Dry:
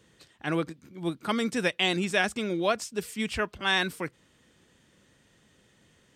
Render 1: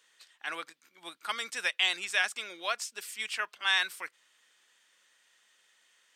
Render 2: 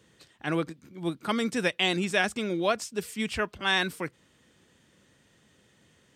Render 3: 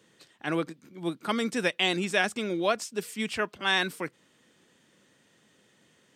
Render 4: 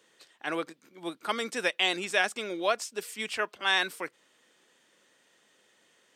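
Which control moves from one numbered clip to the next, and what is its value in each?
high-pass filter, corner frequency: 1,200, 54, 170, 440 Hertz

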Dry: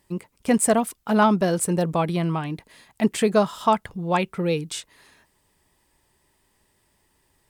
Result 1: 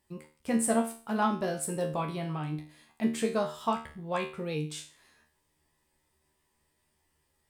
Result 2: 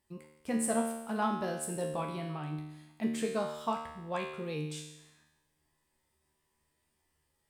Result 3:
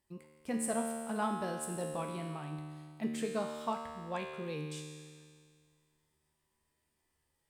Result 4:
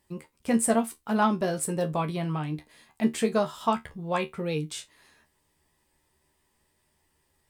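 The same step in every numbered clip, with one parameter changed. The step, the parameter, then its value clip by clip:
tuned comb filter, decay: 0.39, 0.93, 2, 0.16 seconds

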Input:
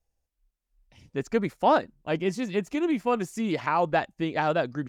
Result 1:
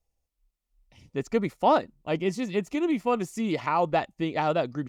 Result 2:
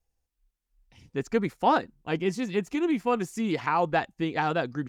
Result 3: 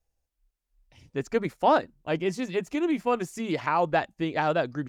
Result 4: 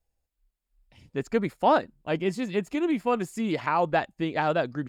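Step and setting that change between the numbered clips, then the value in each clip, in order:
notch filter, centre frequency: 1,600, 600, 210, 5,900 Hertz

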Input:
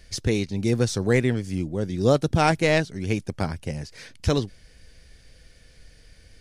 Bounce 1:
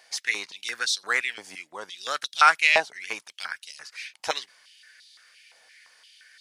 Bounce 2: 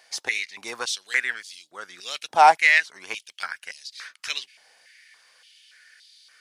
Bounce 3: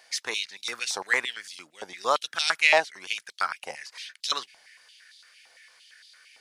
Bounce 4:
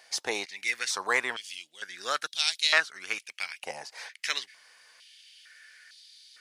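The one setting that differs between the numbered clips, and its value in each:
high-pass on a step sequencer, speed: 5.8, 3.5, 8.8, 2.2 Hertz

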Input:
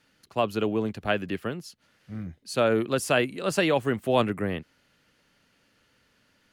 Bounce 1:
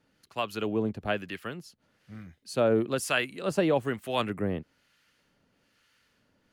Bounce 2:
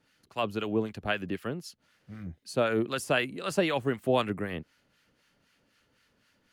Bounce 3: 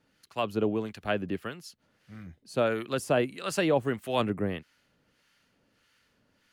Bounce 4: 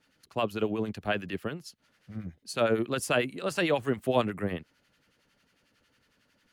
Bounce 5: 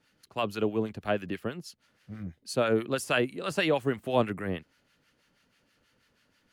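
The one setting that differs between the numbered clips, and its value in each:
two-band tremolo in antiphase, speed: 1.1, 3.9, 1.6, 11, 6.2 Hertz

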